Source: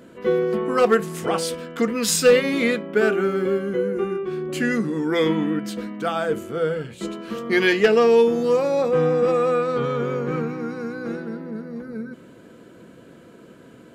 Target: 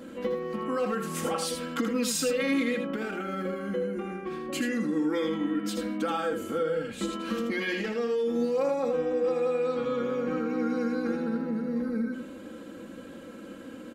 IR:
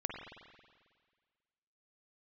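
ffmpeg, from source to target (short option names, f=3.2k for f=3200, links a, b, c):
-af "alimiter=limit=-17dB:level=0:latency=1:release=12,acompressor=threshold=-29dB:ratio=6,aecho=1:1:3.7:0.78,aecho=1:1:80:0.473"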